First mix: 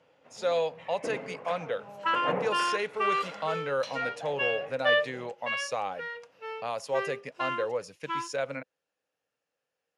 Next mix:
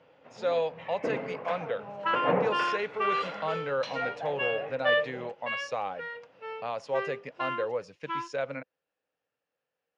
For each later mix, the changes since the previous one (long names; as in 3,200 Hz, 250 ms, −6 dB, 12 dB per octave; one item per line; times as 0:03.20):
first sound +5.0 dB
master: add high-frequency loss of the air 140 metres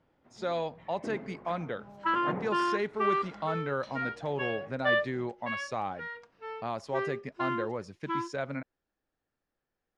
first sound −10.5 dB
master: remove loudspeaker in its box 170–9,400 Hz, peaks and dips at 220 Hz −10 dB, 350 Hz −10 dB, 500 Hz +9 dB, 2,700 Hz +8 dB, 8,400 Hz −6 dB